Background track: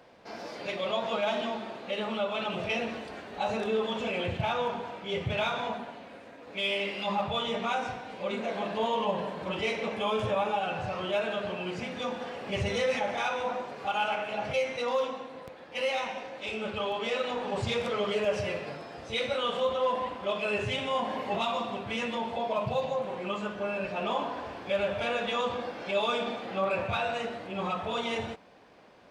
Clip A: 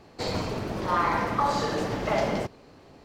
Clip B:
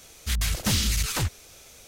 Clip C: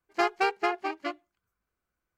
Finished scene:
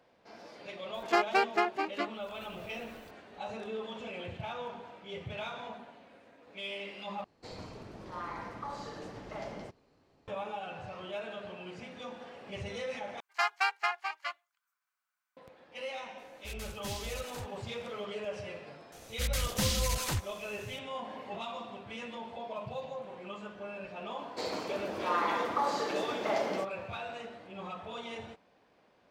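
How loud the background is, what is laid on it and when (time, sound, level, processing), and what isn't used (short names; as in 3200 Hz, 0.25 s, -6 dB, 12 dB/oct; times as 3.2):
background track -10 dB
0.94 add C -1 dB + upward compressor, threshold -34 dBFS
7.24 replace with A -16 dB + LPF 11000 Hz
13.2 replace with C + HPF 890 Hz 24 dB/oct
16.18 add B -16 dB + upward expander, over -33 dBFS
18.92 add B -6.5 dB
24.18 add A -5 dB + Chebyshev high-pass 340 Hz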